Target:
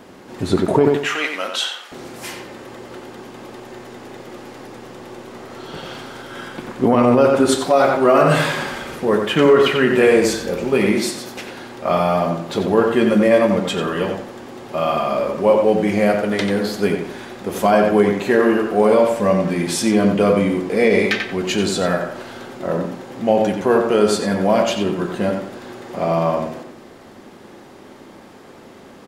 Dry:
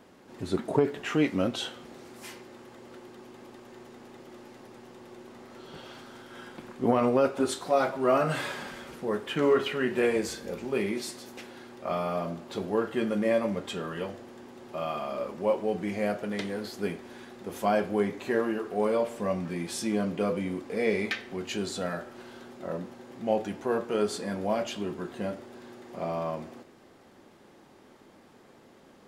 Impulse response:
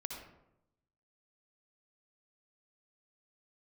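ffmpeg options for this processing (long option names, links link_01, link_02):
-filter_complex "[0:a]asettb=1/sr,asplit=3[link_01][link_02][link_03];[link_01]atrim=end=0.964[link_04];[link_02]atrim=start=0.96:end=1.92,asetpts=PTS-STARTPTS,afade=type=in:duration=0.004:curve=qsin,afade=type=out:start_time=0.956:duration=0.004:curve=qsin,highpass=1000[link_05];[link_03]atrim=start=1.916[link_06];[link_04][link_05]acrossfade=duration=0.004:curve1=hsin:curve2=qsin[link_07];[link_07][link_06]acrossfade=duration=0.004:curve1=qsin:curve2=hsin,asplit=2[link_08][link_09];[link_09]adelay=90,lowpass=frequency=3500:poles=1,volume=-5dB,asplit=2[link_10][link_11];[link_11]adelay=90,lowpass=frequency=3500:poles=1,volume=0.31,asplit=2[link_12][link_13];[link_13]adelay=90,lowpass=frequency=3500:poles=1,volume=0.31,asplit=2[link_14][link_15];[link_15]adelay=90,lowpass=frequency=3500:poles=1,volume=0.31[link_16];[link_10][link_12][link_14][link_16]amix=inputs=4:normalize=0[link_17];[link_08][link_17]amix=inputs=2:normalize=0,alimiter=level_in=15.5dB:limit=-1dB:release=50:level=0:latency=1,volume=-3dB"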